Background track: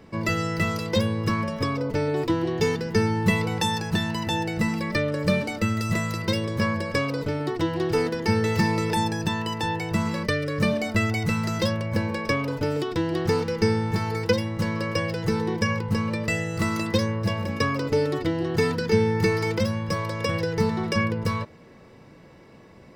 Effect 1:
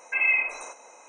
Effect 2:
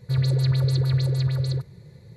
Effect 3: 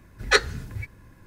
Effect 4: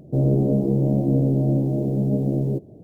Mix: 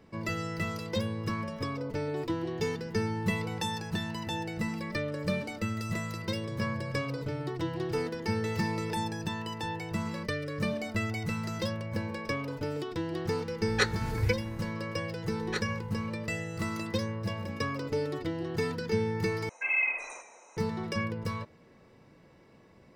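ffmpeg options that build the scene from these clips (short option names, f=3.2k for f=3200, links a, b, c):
-filter_complex "[3:a]asplit=2[a][b];[0:a]volume=-8.5dB[c];[2:a]asuperpass=centerf=150:order=12:qfactor=3.8[d];[a]dynaudnorm=f=130:g=3:m=15dB[e];[1:a]asplit=5[f][g][h][i][j];[g]adelay=120,afreqshift=-58,volume=-14dB[k];[h]adelay=240,afreqshift=-116,volume=-22.4dB[l];[i]adelay=360,afreqshift=-174,volume=-30.8dB[m];[j]adelay=480,afreqshift=-232,volume=-39.2dB[n];[f][k][l][m][n]amix=inputs=5:normalize=0[o];[c]asplit=2[p][q];[p]atrim=end=19.494[r];[o]atrim=end=1.08,asetpts=PTS-STARTPTS,volume=-5.5dB[s];[q]atrim=start=20.566[t];[d]atrim=end=2.16,asetpts=PTS-STARTPTS,volume=-16.5dB,afade=t=in:d=0.004:c=hsin,afade=t=out:st=2.156:d=0.004:c=hsin,adelay=6360[u];[e]atrim=end=1.26,asetpts=PTS-STARTPTS,volume=-10.5dB,afade=t=in:d=0.004:c=hsin,afade=t=out:st=1.256:d=0.004:c=hsin,adelay=13470[v];[b]atrim=end=1.26,asetpts=PTS-STARTPTS,volume=-16.5dB,afade=t=in:d=0.004:c=hsin,afade=t=out:st=1.256:d=0.004:c=hsin,adelay=15210[w];[r][s]acrossfade=d=0.004:c1=hsin:c2=hsin[x];[x][t]acrossfade=d=0.004:c1=hsin:c2=hsin[y];[y][u][v][w]amix=inputs=4:normalize=0"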